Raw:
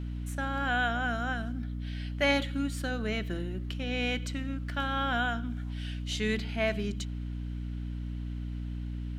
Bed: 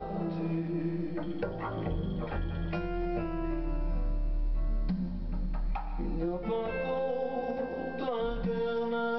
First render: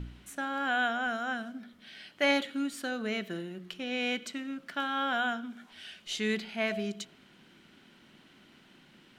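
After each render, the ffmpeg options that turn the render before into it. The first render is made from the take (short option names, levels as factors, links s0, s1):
-af "bandreject=f=60:t=h:w=4,bandreject=f=120:t=h:w=4,bandreject=f=180:t=h:w=4,bandreject=f=240:t=h:w=4,bandreject=f=300:t=h:w=4,bandreject=f=360:t=h:w=4,bandreject=f=420:t=h:w=4,bandreject=f=480:t=h:w=4,bandreject=f=540:t=h:w=4,bandreject=f=600:t=h:w=4,bandreject=f=660:t=h:w=4"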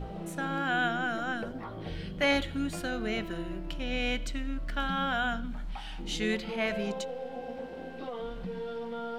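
-filter_complex "[1:a]volume=0.501[s0];[0:a][s0]amix=inputs=2:normalize=0"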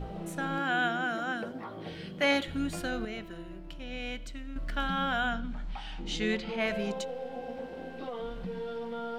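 -filter_complex "[0:a]asettb=1/sr,asplit=3[s0][s1][s2];[s0]atrim=end=0.594[s3];[s1]atrim=start=0.59:end=2.48,asetpts=PTS-STARTPTS,afade=t=in:d=0.004:c=qsin,afade=t=out:st=1.886:d=0.004:c=qsin,highpass=160[s4];[s2]atrim=start=2.476[s5];[s3][s4]acrossfade=d=0.004:c1=hsin:c2=qsin[s6];[s6][s5]acrossfade=d=0.004:c1=qsin:c2=hsin,asettb=1/sr,asplit=3[s7][s8][s9];[s7]atrim=end=5.294[s10];[s8]atrim=start=5.29:end=6.6,asetpts=PTS-STARTPTS,afade=t=in:d=0.004:c=qsin,afade=t=out:st=1.306:d=0.004:c=qsin,lowpass=6800[s11];[s9]atrim=start=6.596[s12];[s10][s11]acrossfade=d=0.004:c1=hsin:c2=qsin[s13];[s13][s12]acrossfade=d=0.004:c1=qsin:c2=hsin,asplit=3[s14][s15][s16];[s14]atrim=end=3.052[s17];[s15]atrim=start=3.048:end=4.562,asetpts=PTS-STARTPTS,volume=0.447[s18];[s16]atrim=start=4.558[s19];[s17][s18]acrossfade=d=0.004:c1=hsin:c2=hsin[s20];[s20][s19]acrossfade=d=0.004:c1=hsin:c2=hsin"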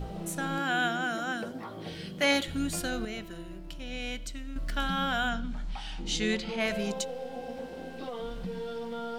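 -af "bass=f=250:g=2,treble=f=4000:g=10"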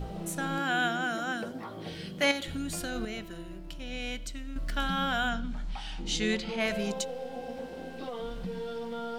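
-filter_complex "[0:a]asettb=1/sr,asplit=3[s0][s1][s2];[s0]atrim=end=2.314[s3];[s1]atrim=start=2.31:end=2.96,asetpts=PTS-STARTPTS,afade=t=in:d=0.004:c=qsin,afade=t=out:st=0.646:d=0.004:c=qsin,acompressor=threshold=0.0282:ratio=3:attack=3.2:release=140:knee=1:detection=peak[s4];[s2]atrim=start=2.956[s5];[s3][s4]acrossfade=d=0.004:c1=hsin:c2=qsin[s6];[s6][s5]acrossfade=d=0.004:c1=qsin:c2=hsin"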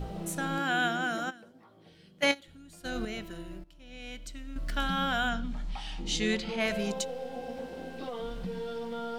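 -filter_complex "[0:a]asplit=3[s0][s1][s2];[s0]afade=t=out:st=1.29:d=0.02[s3];[s1]agate=range=0.141:threshold=0.0355:ratio=16:release=100:detection=peak,afade=t=in:st=1.29:d=0.02,afade=t=out:st=2.84:d=0.02[s4];[s2]afade=t=in:st=2.84:d=0.02[s5];[s3][s4][s5]amix=inputs=3:normalize=0,asettb=1/sr,asplit=3[s6][s7][s8];[s6]atrim=end=5.434[s9];[s7]atrim=start=5.43:end=6.26,asetpts=PTS-STARTPTS,afade=t=in:d=0.004:c=qsin,afade=t=out:st=0.826:d=0.004:c=qsin,bandreject=f=1500:w=11[s10];[s8]atrim=start=6.256[s11];[s9][s10]acrossfade=d=0.004:c1=hsin:c2=qsin[s12];[s12][s11]acrossfade=d=0.004:c1=qsin:c2=hsin,asplit=2[s13][s14];[s13]atrim=end=3.64,asetpts=PTS-STARTPTS,afade=t=out:st=3.636:d=0.004:c=hsin:silence=0.1[s15];[s14]atrim=start=3.64,asetpts=PTS-STARTPTS,afade=t=in:d=1.13:silence=0.1[s16];[s15][s16]concat=n=2:v=0:a=1"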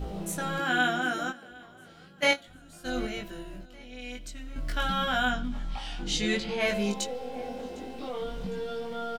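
-filter_complex "[0:a]asplit=2[s0][s1];[s1]adelay=20,volume=0.794[s2];[s0][s2]amix=inputs=2:normalize=0,aecho=1:1:755|1510|2265:0.0631|0.0328|0.0171"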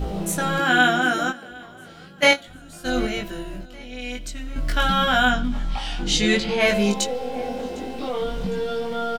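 -af "volume=2.66,alimiter=limit=0.794:level=0:latency=1"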